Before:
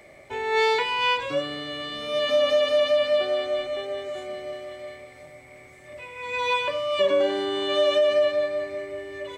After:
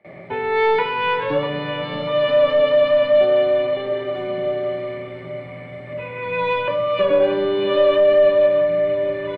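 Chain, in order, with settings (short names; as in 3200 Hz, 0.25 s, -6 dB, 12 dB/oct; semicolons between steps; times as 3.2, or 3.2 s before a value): gate with hold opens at -42 dBFS; HPF 110 Hz; bell 170 Hz +14 dB 0.34 oct; in parallel at 0 dB: compressor, threshold -33 dBFS, peak gain reduction 14.5 dB; on the sum: soft clip -12.5 dBFS, distortion -22 dB; air absorption 440 m; feedback echo 0.642 s, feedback 60%, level -13 dB; on a send at -7 dB: reverb RT60 0.65 s, pre-delay 9 ms; on the sum: gain +5 dB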